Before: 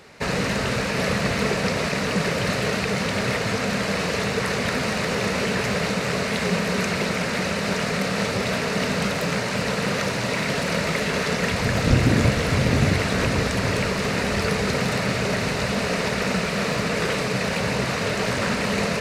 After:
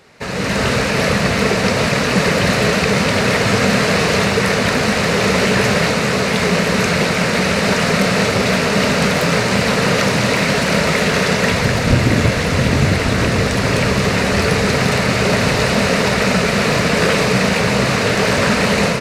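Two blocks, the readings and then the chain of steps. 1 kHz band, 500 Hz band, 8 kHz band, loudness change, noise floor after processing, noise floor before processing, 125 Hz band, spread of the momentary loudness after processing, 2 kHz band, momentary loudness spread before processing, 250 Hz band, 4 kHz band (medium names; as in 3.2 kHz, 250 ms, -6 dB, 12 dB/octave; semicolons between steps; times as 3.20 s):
+8.0 dB, +8.0 dB, +8.0 dB, +8.0 dB, -18 dBFS, -26 dBFS, +7.0 dB, 2 LU, +8.0 dB, 3 LU, +7.5 dB, +8.0 dB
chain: level rider; flange 0.51 Hz, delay 7.4 ms, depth 6.6 ms, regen -73%; on a send: delay 1154 ms -7 dB; on the sum: trim +3.5 dB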